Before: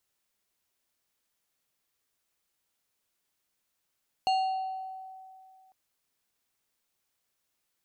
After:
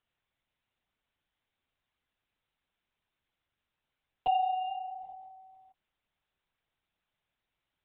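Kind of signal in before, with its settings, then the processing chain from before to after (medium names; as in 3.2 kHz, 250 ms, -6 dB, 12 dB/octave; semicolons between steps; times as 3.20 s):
FM tone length 1.45 s, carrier 758 Hz, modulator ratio 4.7, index 0.54, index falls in 1.36 s exponential, decay 2.35 s, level -21.5 dB
LPC vocoder at 8 kHz whisper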